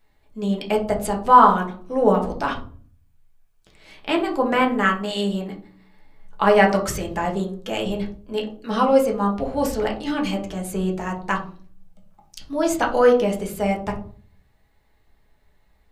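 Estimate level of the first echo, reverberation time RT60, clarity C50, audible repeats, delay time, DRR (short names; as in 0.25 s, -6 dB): none, 0.45 s, 10.0 dB, none, none, -0.5 dB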